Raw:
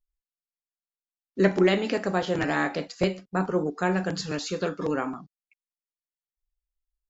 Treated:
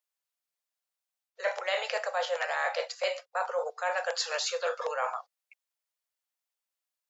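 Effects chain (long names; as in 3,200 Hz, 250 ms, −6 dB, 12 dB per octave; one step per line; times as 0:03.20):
Butterworth high-pass 490 Hz 96 dB per octave
reversed playback
downward compressor, threshold −34 dBFS, peak gain reduction 13 dB
reversed playback
level +6.5 dB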